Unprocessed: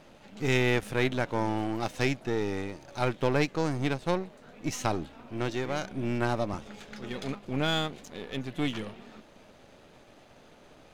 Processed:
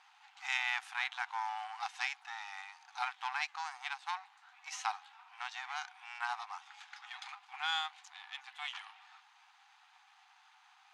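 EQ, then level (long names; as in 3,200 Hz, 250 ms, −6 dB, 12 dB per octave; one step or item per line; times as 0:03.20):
linear-phase brick-wall band-pass 730–12,000 Hz
high-frequency loss of the air 58 metres
−3.0 dB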